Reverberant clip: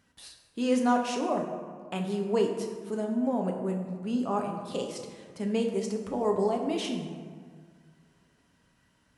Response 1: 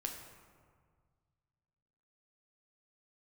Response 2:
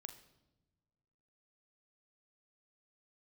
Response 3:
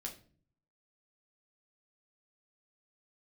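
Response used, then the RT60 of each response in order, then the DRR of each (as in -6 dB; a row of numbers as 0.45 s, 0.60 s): 1; 1.8 s, no single decay rate, 0.45 s; 2.0 dB, 7.5 dB, -0.5 dB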